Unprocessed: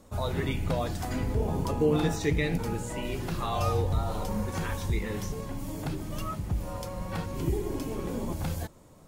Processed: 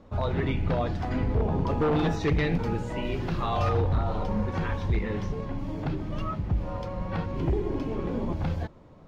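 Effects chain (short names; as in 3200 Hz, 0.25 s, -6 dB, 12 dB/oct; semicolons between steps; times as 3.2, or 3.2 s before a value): 1.7–3.7 high shelf 5600 Hz +9 dB; wavefolder -21 dBFS; air absorption 250 m; gain +3.5 dB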